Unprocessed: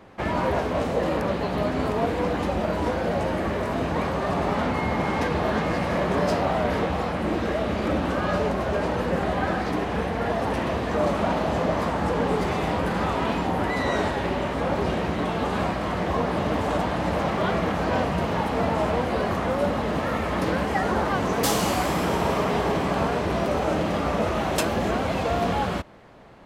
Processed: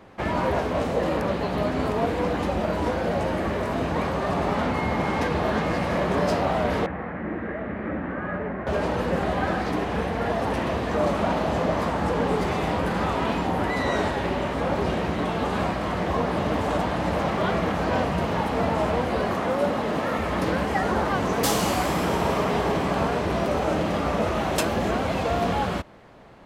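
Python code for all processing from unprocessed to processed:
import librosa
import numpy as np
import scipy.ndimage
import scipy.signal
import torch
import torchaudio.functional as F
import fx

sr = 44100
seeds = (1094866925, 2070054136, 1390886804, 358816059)

y = fx.chain(x, sr, fx.ladder_lowpass(hz=2100.0, resonance_pct=60),
    fx.peak_eq(hz=220.0, db=7.0, octaves=2.4), at=(6.86, 8.67))
y = fx.chain(y, sr, fx.highpass(hz=330.0, slope=6),
    fx.low_shelf(hz=440.0, db=5.5), at=(19.31, 20.18))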